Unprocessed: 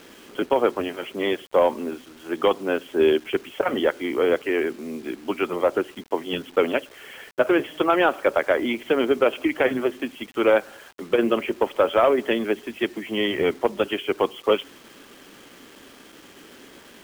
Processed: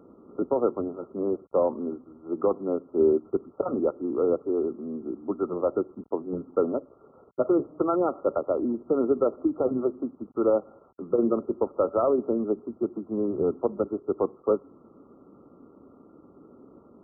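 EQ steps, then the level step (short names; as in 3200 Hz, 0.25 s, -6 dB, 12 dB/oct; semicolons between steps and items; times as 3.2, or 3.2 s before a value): HPF 56 Hz; brick-wall FIR low-pass 1400 Hz; bell 960 Hz -9.5 dB 1.6 oct; 0.0 dB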